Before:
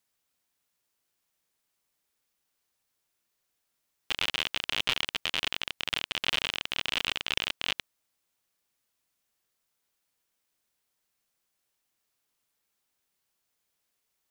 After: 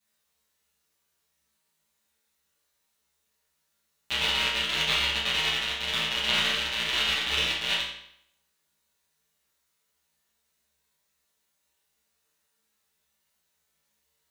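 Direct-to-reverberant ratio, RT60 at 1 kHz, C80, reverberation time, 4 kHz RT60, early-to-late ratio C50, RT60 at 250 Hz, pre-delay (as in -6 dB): -11.5 dB, 0.70 s, 5.5 dB, 0.70 s, 0.65 s, 2.0 dB, 0.70 s, 5 ms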